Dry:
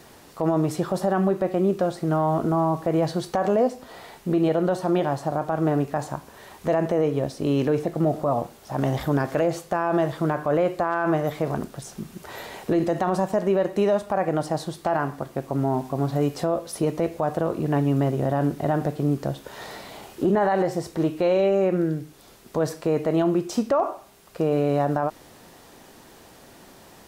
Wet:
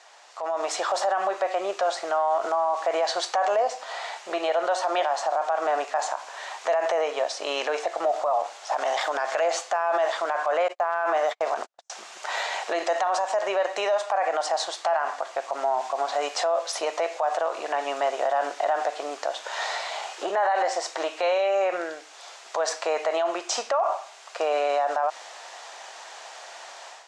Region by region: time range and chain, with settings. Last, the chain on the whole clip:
10.68–11.9 gate -31 dBFS, range -50 dB + low shelf 200 Hz +10 dB
whole clip: elliptic band-pass 670–7200 Hz, stop band 60 dB; limiter -26.5 dBFS; AGC gain up to 10.5 dB

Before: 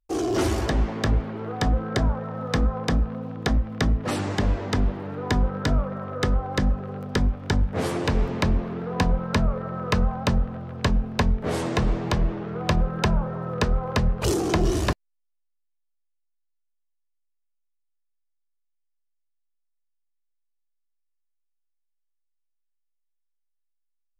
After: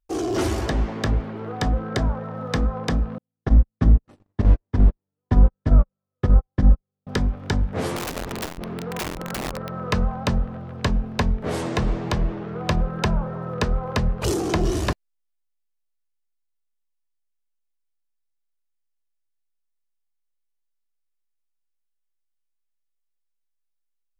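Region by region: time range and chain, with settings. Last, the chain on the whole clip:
3.18–7.07 gate -22 dBFS, range -57 dB + tilt -2 dB/oct
7.96–9.77 compressor 8:1, threshold -22 dBFS + wrapped overs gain 22 dB + core saturation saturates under 110 Hz
whole clip: dry

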